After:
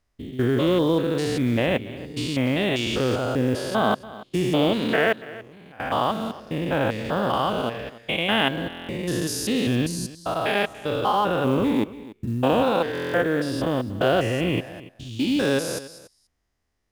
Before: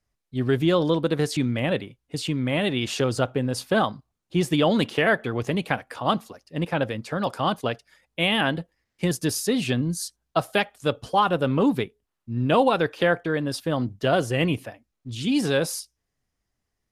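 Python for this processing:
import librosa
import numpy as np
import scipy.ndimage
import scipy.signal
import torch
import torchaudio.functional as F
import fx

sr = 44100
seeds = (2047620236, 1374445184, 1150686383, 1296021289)

p1 = fx.spec_steps(x, sr, hold_ms=200)
p2 = fx.rider(p1, sr, range_db=4, speed_s=0.5)
p3 = p1 + (p2 * 10.0 ** (0.0 / 20.0))
p4 = fx.peak_eq(p3, sr, hz=150.0, db=-5.5, octaves=0.9)
p5 = fx.level_steps(p4, sr, step_db=23, at=(5.12, 5.8))
p6 = fx.high_shelf(p5, sr, hz=6600.0, db=-6.5)
p7 = fx.quant_float(p6, sr, bits=4)
p8 = p7 + fx.echo_single(p7, sr, ms=285, db=-18.0, dry=0)
y = fx.buffer_glitch(p8, sr, at_s=(8.68, 12.93), block=1024, repeats=8)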